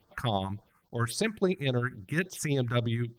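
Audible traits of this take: a quantiser's noise floor 12-bit, dither none; tremolo triangle 12 Hz, depth 50%; phasing stages 4, 3.6 Hz, lowest notch 540–2500 Hz; Opus

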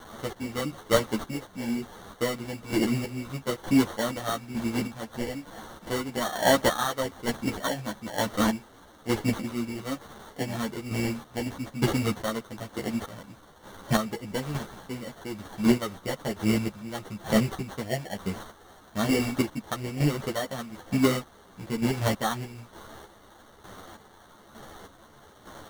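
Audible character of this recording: a quantiser's noise floor 8-bit, dither triangular; chopped level 1.1 Hz, depth 60%, duty 35%; aliases and images of a low sample rate 2500 Hz, jitter 0%; a shimmering, thickened sound

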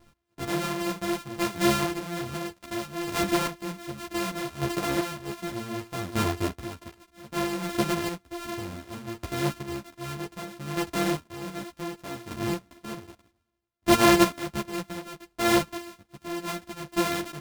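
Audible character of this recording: a buzz of ramps at a fixed pitch in blocks of 128 samples; chopped level 0.65 Hz, depth 65%, duty 25%; a shimmering, thickened sound

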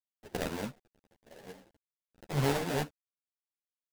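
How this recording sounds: aliases and images of a low sample rate 1200 Hz, jitter 20%; tremolo saw down 0.51 Hz, depth 50%; a quantiser's noise floor 10-bit, dither none; a shimmering, thickened sound

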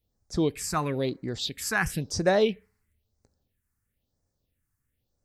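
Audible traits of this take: phasing stages 4, 1 Hz, lowest notch 540–3000 Hz

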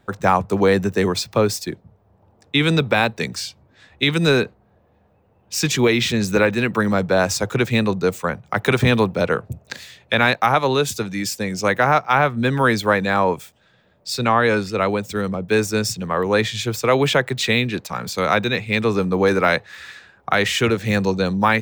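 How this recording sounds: noise floor -59 dBFS; spectral tilt -4.5 dB/oct

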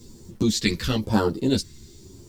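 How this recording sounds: phasing stages 2, 1 Hz, lowest notch 710–2300 Hz; a quantiser's noise floor 10-bit, dither none; a shimmering, thickened sound

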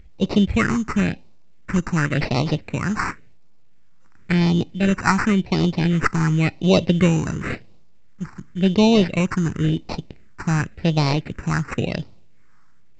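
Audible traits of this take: aliases and images of a low sample rate 3300 Hz, jitter 0%; phasing stages 4, 0.93 Hz, lowest notch 560–1600 Hz; µ-law

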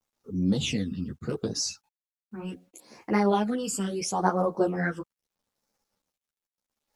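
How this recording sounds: phasing stages 12, 0.74 Hz, lowest notch 650–3300 Hz; a quantiser's noise floor 12-bit, dither none; a shimmering, thickened sound

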